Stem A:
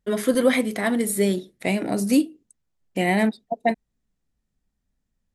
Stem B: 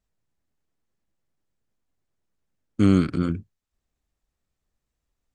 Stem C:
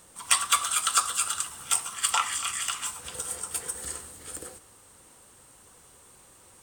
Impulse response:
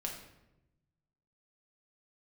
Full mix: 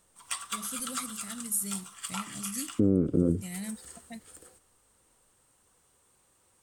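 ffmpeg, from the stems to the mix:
-filter_complex "[0:a]firequalizer=gain_entry='entry(140,0);entry(370,-22);entry(6000,8)':delay=0.05:min_phase=1,adelay=450,volume=-9.5dB[link_01];[1:a]lowpass=frequency=500:width_type=q:width=3.4,volume=0.5dB,asplit=2[link_02][link_03];[2:a]volume=-12.5dB[link_04];[link_03]apad=whole_len=292038[link_05];[link_04][link_05]sidechaincompress=threshold=-28dB:ratio=6:attack=47:release=352[link_06];[link_01][link_02][link_06]amix=inputs=3:normalize=0,alimiter=limit=-13.5dB:level=0:latency=1:release=201"

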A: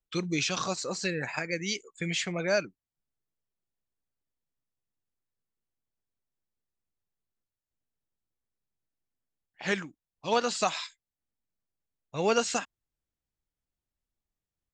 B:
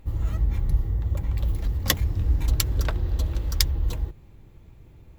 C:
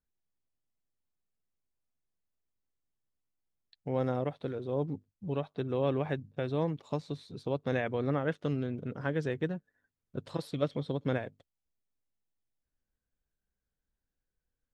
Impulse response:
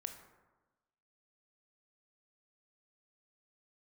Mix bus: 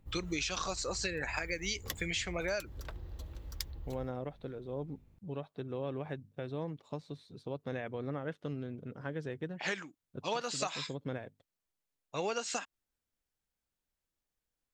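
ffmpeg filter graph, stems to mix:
-filter_complex "[0:a]highpass=frequency=340:poles=1,volume=1.5dB[link_01];[1:a]acrossover=split=350[link_02][link_03];[link_02]acompressor=threshold=-27dB:ratio=2.5[link_04];[link_04][link_03]amix=inputs=2:normalize=0,aeval=exprs='val(0)+0.00447*(sin(2*PI*50*n/s)+sin(2*PI*2*50*n/s)/2+sin(2*PI*3*50*n/s)/3+sin(2*PI*4*50*n/s)/4+sin(2*PI*5*50*n/s)/5)':channel_layout=same,volume=-15.5dB[link_05];[2:a]volume=-6.5dB[link_06];[link_01][link_05][link_06]amix=inputs=3:normalize=0,acompressor=threshold=-32dB:ratio=6"

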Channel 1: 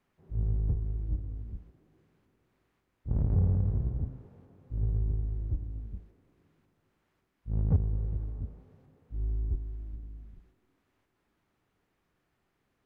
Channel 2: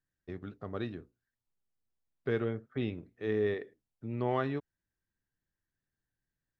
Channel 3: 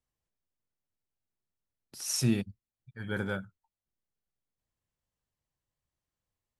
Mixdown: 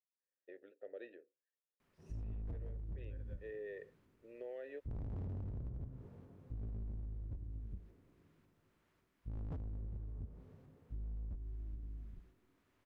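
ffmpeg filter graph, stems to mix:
ffmpeg -i stem1.wav -i stem2.wav -i stem3.wav -filter_complex "[0:a]bandreject=frequency=790:width=12,adelay=1800,volume=-1dB[link_01];[1:a]lowshelf=frequency=230:width_type=q:width=1.5:gain=-13,adelay=200,volume=0dB[link_02];[2:a]volume=-15dB,asplit=2[link_03][link_04];[link_04]apad=whole_len=299853[link_05];[link_02][link_05]sidechaincompress=threshold=-47dB:ratio=8:attack=37:release=836[link_06];[link_06][link_03]amix=inputs=2:normalize=0,asplit=3[link_07][link_08][link_09];[link_07]bandpass=frequency=530:width_type=q:width=8,volume=0dB[link_10];[link_08]bandpass=frequency=1840:width_type=q:width=8,volume=-6dB[link_11];[link_09]bandpass=frequency=2480:width_type=q:width=8,volume=-9dB[link_12];[link_10][link_11][link_12]amix=inputs=3:normalize=0,alimiter=level_in=13.5dB:limit=-24dB:level=0:latency=1:release=135,volume=-13.5dB,volume=0dB[link_13];[link_01][link_13]amix=inputs=2:normalize=0,asoftclip=type=hard:threshold=-29.5dB,acompressor=threshold=-41dB:ratio=12" out.wav

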